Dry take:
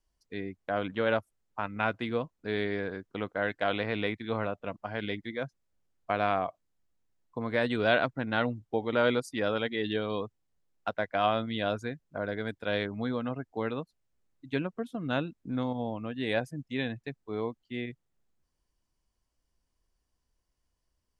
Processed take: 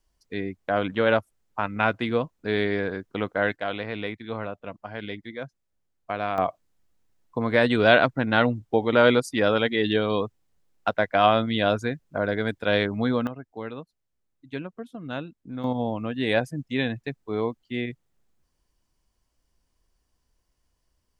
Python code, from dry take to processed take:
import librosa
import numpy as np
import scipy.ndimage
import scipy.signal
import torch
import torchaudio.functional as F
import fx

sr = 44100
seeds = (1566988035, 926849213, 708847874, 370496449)

y = fx.gain(x, sr, db=fx.steps((0.0, 6.5), (3.56, -0.5), (6.38, 8.0), (13.27, -2.5), (15.64, 6.5)))